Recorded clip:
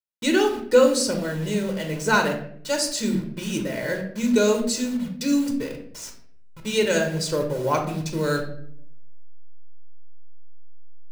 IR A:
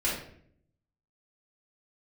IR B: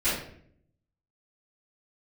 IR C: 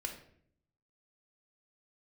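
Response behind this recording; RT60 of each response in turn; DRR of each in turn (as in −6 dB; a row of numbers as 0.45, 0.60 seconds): C; 0.60, 0.60, 0.65 seconds; −7.5, −16.5, 2.5 decibels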